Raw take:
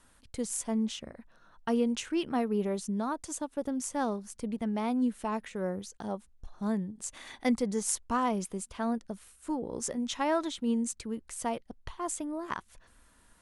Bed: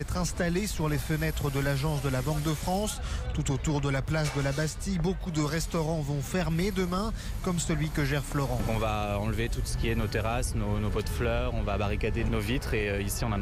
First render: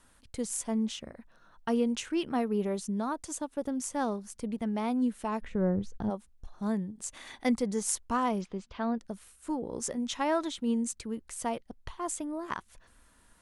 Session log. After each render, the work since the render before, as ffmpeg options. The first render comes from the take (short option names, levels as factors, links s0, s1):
-filter_complex "[0:a]asplit=3[s0][s1][s2];[s0]afade=t=out:st=5.41:d=0.02[s3];[s1]aemphasis=mode=reproduction:type=riaa,afade=t=in:st=5.41:d=0.02,afade=t=out:st=6.09:d=0.02[s4];[s2]afade=t=in:st=6.09:d=0.02[s5];[s3][s4][s5]amix=inputs=3:normalize=0,asettb=1/sr,asplit=3[s6][s7][s8];[s6]atrim=end=8.414[s9];[s7]atrim=start=8.41:end=8.99,asetpts=PTS-STARTPTS,afade=t=in:d=0.004:c=qsin,afade=t=out:st=0.576:d=0.004:c=qsin,lowpass=f=4800:w=0.5412,lowpass=f=4800:w=1.3066[s10];[s8]atrim=start=8.986[s11];[s9][s10]acrossfade=d=0.004:c1=hsin:c2=qsin[s12];[s12][s11]acrossfade=d=0.004:c1=qsin:c2=hsin"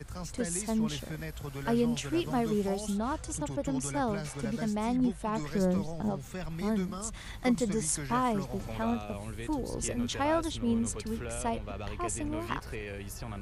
-filter_complex "[1:a]volume=0.299[s0];[0:a][s0]amix=inputs=2:normalize=0"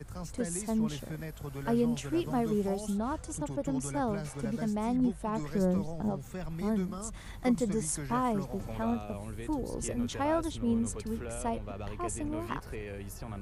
-af "equalizer=f=3600:w=0.45:g=-6,bandreject=f=60:t=h:w=6,bandreject=f=120:t=h:w=6"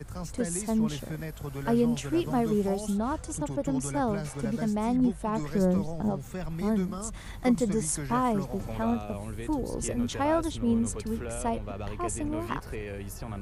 -af "volume=1.5"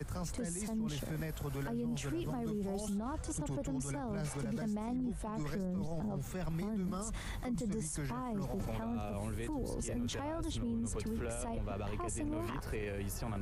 -filter_complex "[0:a]acrossover=split=190[s0][s1];[s1]acompressor=threshold=0.0282:ratio=6[s2];[s0][s2]amix=inputs=2:normalize=0,alimiter=level_in=2.24:limit=0.0631:level=0:latency=1:release=14,volume=0.447"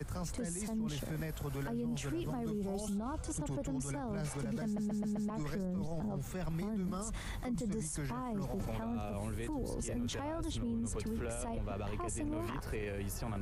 -filter_complex "[0:a]asettb=1/sr,asplit=3[s0][s1][s2];[s0]atrim=end=2.554[s3];[s1]atrim=start=2.55:end=3.25,asetpts=PTS-STARTPTS,afade=t=in:d=0.004:c=qsin,afade=t=out:st=0.696:d=0.004:c=qsin,asuperstop=centerf=1800:order=4:qfactor=5.1[s4];[s2]atrim=start=3.246[s5];[s3][s4]acrossfade=d=0.004:c1=hsin:c2=qsin[s6];[s6][s5]acrossfade=d=0.004:c1=qsin:c2=hsin,asplit=6[s7][s8][s9][s10][s11][s12];[s7]atrim=end=4.782[s13];[s8]atrim=start=4.648:end=4.782[s14];[s9]atrim=start=4.648:end=4.782[s15];[s10]atrim=start=4.648:end=4.782[s16];[s11]atrim=start=4.648:end=4.782[s17];[s12]atrim=start=5.298[s18];[s13][s14]acrossfade=d=0.004:c1=hsin:c2=hsin[s19];[s19][s15]acrossfade=d=0.004:c1=hsin:c2=hsin[s20];[s20][s16]acrossfade=d=0.004:c1=hsin:c2=hsin[s21];[s21][s17]acrossfade=d=0.004:c1=hsin:c2=hsin[s22];[s22][s18]acrossfade=d=0.004:c1=hsin:c2=hsin"